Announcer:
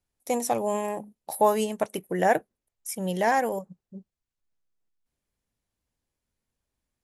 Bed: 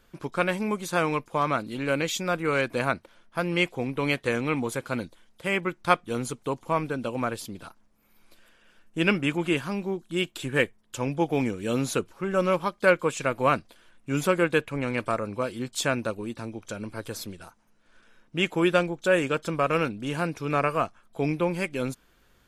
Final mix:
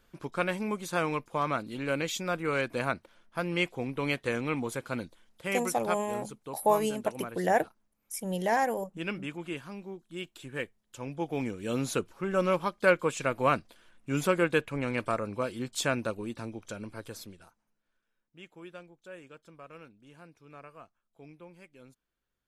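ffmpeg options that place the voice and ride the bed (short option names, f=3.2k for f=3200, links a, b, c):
-filter_complex "[0:a]adelay=5250,volume=-3.5dB[a];[1:a]volume=4.5dB,afade=t=out:st=5.39:d=0.56:silence=0.421697,afade=t=in:st=10.9:d=1.14:silence=0.354813,afade=t=out:st=16.45:d=1.55:silence=0.0841395[b];[a][b]amix=inputs=2:normalize=0"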